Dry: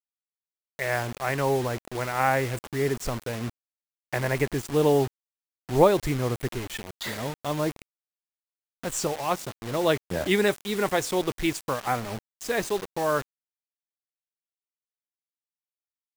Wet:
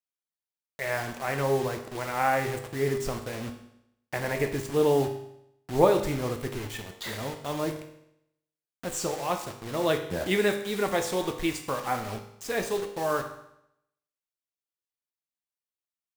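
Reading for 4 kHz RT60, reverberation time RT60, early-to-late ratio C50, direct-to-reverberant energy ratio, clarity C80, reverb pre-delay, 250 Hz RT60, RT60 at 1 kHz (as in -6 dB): 0.75 s, 0.80 s, 8.5 dB, 4.5 dB, 11.5 dB, 8 ms, 0.80 s, 0.80 s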